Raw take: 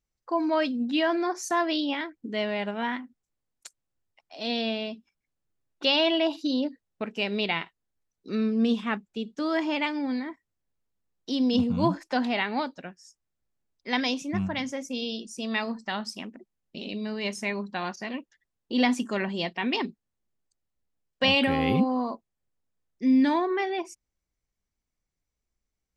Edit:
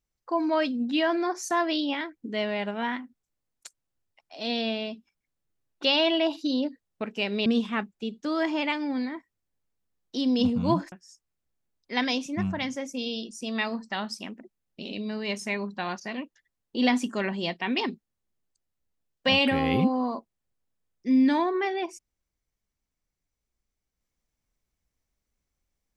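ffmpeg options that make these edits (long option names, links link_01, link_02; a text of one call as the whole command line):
ffmpeg -i in.wav -filter_complex "[0:a]asplit=3[link_01][link_02][link_03];[link_01]atrim=end=7.462[link_04];[link_02]atrim=start=8.598:end=12.062[link_05];[link_03]atrim=start=12.878[link_06];[link_04][link_05]acrossfade=duration=0.004:curve1=hsin:curve2=hsin[link_07];[link_07][link_06]acrossfade=duration=0.004:curve1=hsin:curve2=hsin" out.wav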